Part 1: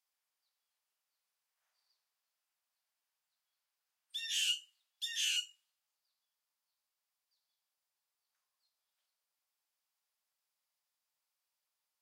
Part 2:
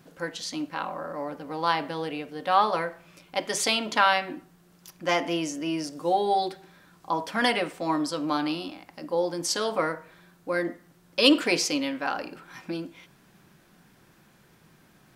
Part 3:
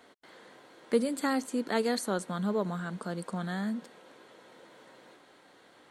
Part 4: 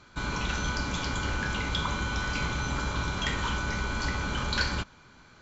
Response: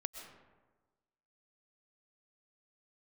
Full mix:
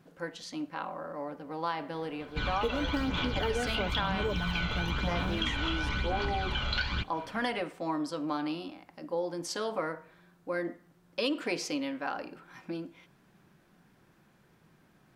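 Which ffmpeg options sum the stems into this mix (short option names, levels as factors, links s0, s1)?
-filter_complex "[0:a]aeval=exprs='(mod(22.4*val(0)+1,2)-1)/22.4':c=same,acompressor=threshold=0.00355:ratio=3,volume=0.596[s0];[1:a]volume=0.596[s1];[2:a]aecho=1:1:6.8:0.65,acrusher=samples=8:mix=1:aa=0.000001:lfo=1:lforange=12.8:lforate=0.37,highshelf=f=2400:g=-11.5,adelay=1700,volume=1.26[s2];[3:a]lowpass=4900,equalizer=f=3100:w=1.3:g=13.5,aphaser=in_gain=1:out_gain=1:delay=1.5:decay=0.5:speed=1:type=sinusoidal,adelay=2200,volume=0.708[s3];[s0][s1][s2][s3]amix=inputs=4:normalize=0,highshelf=f=3100:g=-7.5,acompressor=threshold=0.0447:ratio=6"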